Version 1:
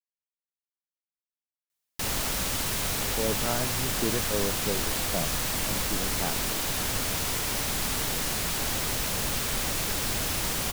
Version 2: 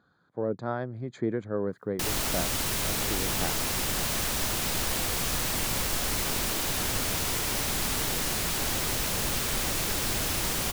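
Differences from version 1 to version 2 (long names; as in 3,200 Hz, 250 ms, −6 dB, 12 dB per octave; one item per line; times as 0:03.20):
speech: entry −2.80 s
master: add parametric band 350 Hz +3 dB 0.27 octaves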